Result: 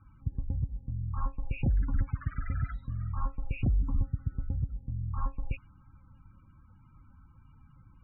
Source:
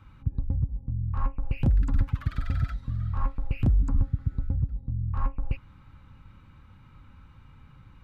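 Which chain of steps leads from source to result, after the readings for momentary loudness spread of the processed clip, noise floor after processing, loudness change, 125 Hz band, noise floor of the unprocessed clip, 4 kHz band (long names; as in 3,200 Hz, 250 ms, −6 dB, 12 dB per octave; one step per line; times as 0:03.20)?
7 LU, −59 dBFS, −5.0 dB, −5.0 dB, −53 dBFS, can't be measured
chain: spectral peaks only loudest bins 32
dynamic equaliser 2,300 Hz, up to +7 dB, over −59 dBFS, Q 0.86
low-pass that shuts in the quiet parts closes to 2,500 Hz
level −5 dB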